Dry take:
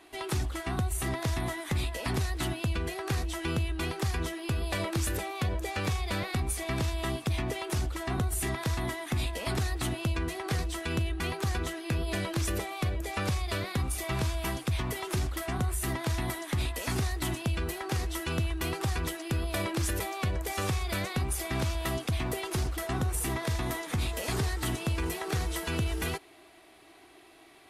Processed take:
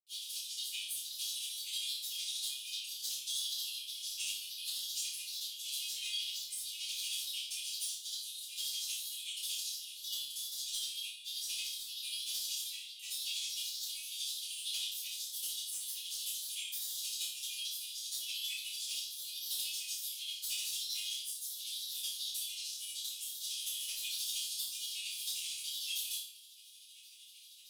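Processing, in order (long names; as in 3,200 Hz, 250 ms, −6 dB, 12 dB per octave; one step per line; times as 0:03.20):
lower of the sound and its delayed copy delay 8.5 ms
Butterworth high-pass 3,000 Hz 72 dB per octave
high-shelf EQ 8,800 Hz +4 dB
downward compressor 6 to 1, threshold −42 dBFS, peak gain reduction 12 dB
granular cloud, grains 13 per second, pitch spread up and down by 3 semitones
soft clipping −32 dBFS, distortion −28 dB
flutter between parallel walls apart 5 metres, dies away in 0.45 s
rectangular room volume 33 cubic metres, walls mixed, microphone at 1.6 metres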